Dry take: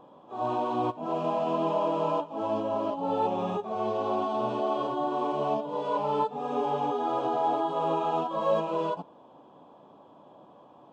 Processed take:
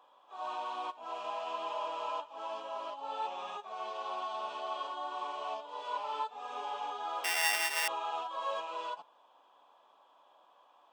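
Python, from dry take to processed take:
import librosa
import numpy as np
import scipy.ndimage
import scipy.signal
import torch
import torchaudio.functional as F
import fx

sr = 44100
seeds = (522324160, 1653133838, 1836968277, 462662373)

y = fx.sample_sort(x, sr, block=16, at=(7.24, 7.88))
y = scipy.signal.sosfilt(scipy.signal.butter(2, 1300.0, 'highpass', fs=sr, output='sos'), y)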